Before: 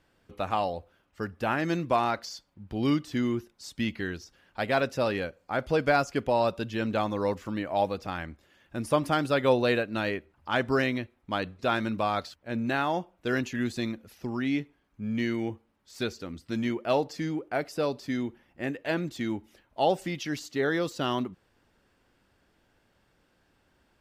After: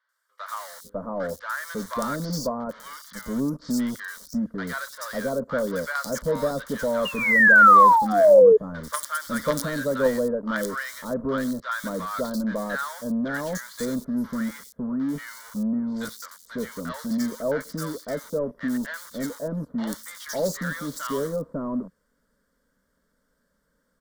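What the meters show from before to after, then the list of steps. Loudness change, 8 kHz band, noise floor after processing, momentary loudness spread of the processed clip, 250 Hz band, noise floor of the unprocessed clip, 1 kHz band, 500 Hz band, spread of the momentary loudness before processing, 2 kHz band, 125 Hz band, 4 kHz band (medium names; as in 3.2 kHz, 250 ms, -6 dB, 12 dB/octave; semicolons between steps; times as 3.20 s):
+6.5 dB, +10.5 dB, -72 dBFS, 18 LU, +3.0 dB, -69 dBFS, +7.5 dB, +6.0 dB, 12 LU, +10.0 dB, -1.0 dB, -2.0 dB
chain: treble shelf 6.7 kHz +5 dB; in parallel at -4 dB: companded quantiser 2-bit; on the sum: three bands offset in time mids, highs, lows 90/550 ms, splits 940/4100 Hz; painted sound fall, 7.05–8.57 s, 420–2900 Hz -11 dBFS; static phaser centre 520 Hz, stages 8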